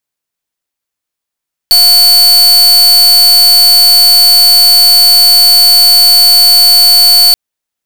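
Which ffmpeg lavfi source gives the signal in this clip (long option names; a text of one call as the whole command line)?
ffmpeg -f lavfi -i "aevalsrc='0.596*(2*lt(mod(4480*t,1),0.44)-1)':duration=5.63:sample_rate=44100" out.wav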